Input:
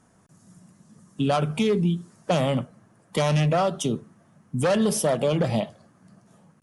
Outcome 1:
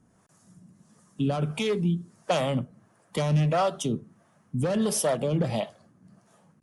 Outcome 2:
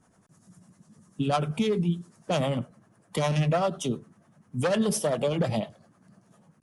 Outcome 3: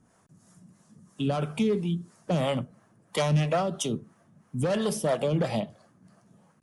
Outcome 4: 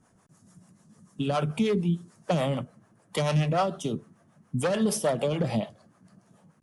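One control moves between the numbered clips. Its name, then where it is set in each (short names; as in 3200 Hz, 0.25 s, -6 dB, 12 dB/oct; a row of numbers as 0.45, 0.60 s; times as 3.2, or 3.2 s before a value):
harmonic tremolo, rate: 1.5, 10, 3, 6.8 Hz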